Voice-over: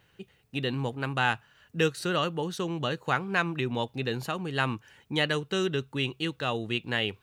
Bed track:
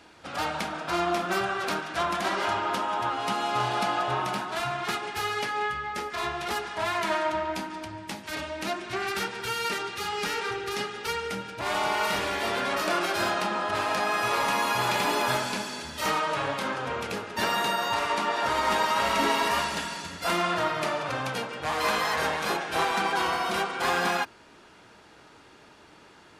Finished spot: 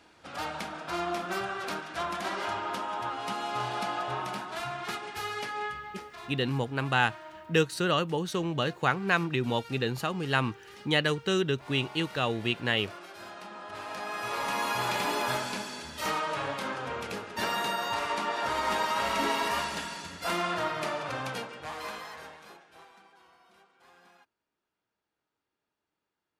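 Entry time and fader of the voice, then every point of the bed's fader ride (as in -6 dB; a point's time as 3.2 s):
5.75 s, +1.0 dB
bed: 5.67 s -5.5 dB
6.51 s -19 dB
13.17 s -19 dB
14.64 s -4 dB
21.34 s -4 dB
23.17 s -33.5 dB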